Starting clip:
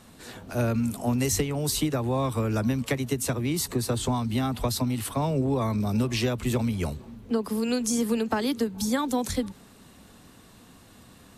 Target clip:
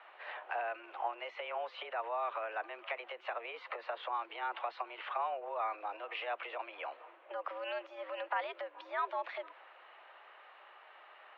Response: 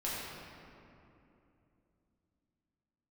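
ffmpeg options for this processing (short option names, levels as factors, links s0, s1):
-af "acompressor=threshold=0.0501:ratio=6,alimiter=level_in=1.12:limit=0.0631:level=0:latency=1:release=35,volume=0.891,highpass=f=540:t=q:w=0.5412,highpass=f=540:t=q:w=1.307,lowpass=f=2700:t=q:w=0.5176,lowpass=f=2700:t=q:w=0.7071,lowpass=f=2700:t=q:w=1.932,afreqshift=110,volume=1.33"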